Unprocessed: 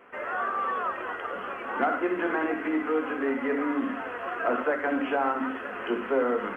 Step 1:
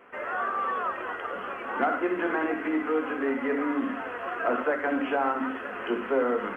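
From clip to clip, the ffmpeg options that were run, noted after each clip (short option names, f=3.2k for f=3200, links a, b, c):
-af anull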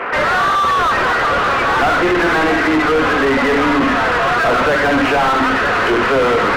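-filter_complex "[0:a]highpass=f=170:p=1,asplit=2[a][b];[b]highpass=f=720:p=1,volume=36dB,asoftclip=type=tanh:threshold=-13.5dB[c];[a][c]amix=inputs=2:normalize=0,lowpass=f=2.7k:p=1,volume=-6dB,bass=f=250:g=3,treble=f=4k:g=-6,volume=6dB"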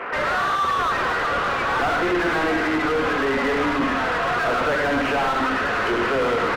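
-af "aecho=1:1:107:0.422,volume=-8dB"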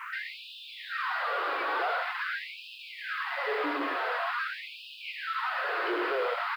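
-af "aresample=11025,aresample=44100,acrusher=bits=8:mix=0:aa=0.000001,afftfilt=real='re*gte(b*sr/1024,270*pow(2500/270,0.5+0.5*sin(2*PI*0.46*pts/sr)))':imag='im*gte(b*sr/1024,270*pow(2500/270,0.5+0.5*sin(2*PI*0.46*pts/sr)))':win_size=1024:overlap=0.75,volume=-8dB"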